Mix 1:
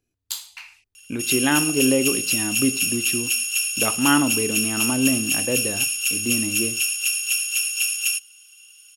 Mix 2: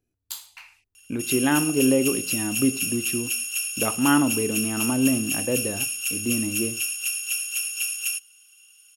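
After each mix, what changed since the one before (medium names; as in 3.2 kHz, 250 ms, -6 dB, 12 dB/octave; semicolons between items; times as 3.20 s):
master: add peaking EQ 4.5 kHz -7 dB 2.8 oct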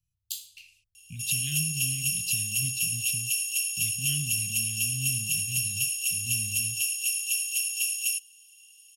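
master: add Chebyshev band-stop 160–2800 Hz, order 4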